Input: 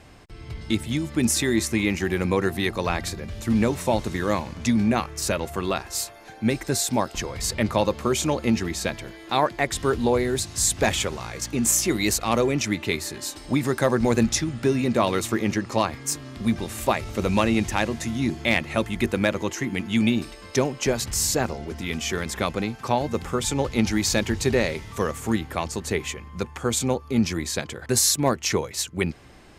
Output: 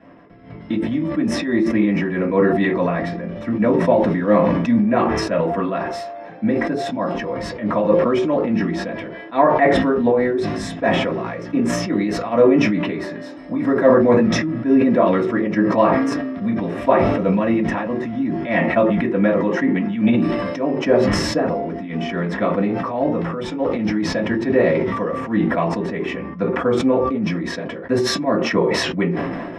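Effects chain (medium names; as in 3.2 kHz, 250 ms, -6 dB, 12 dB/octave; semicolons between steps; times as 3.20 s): treble shelf 7.1 kHz +4.5 dB; tremolo triangle 4.7 Hz, depth 85%; tape spacing loss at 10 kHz 24 dB; reverberation RT60 0.30 s, pre-delay 3 ms, DRR -5 dB; decay stretcher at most 28 dB/s; trim -6.5 dB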